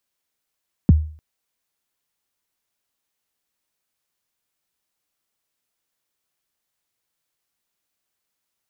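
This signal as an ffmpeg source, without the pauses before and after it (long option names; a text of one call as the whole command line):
ffmpeg -f lavfi -i "aevalsrc='0.562*pow(10,-3*t/0.44)*sin(2*PI*(270*0.022/log(77/270)*(exp(log(77/270)*min(t,0.022)/0.022)-1)+77*max(t-0.022,0)))':duration=0.3:sample_rate=44100" out.wav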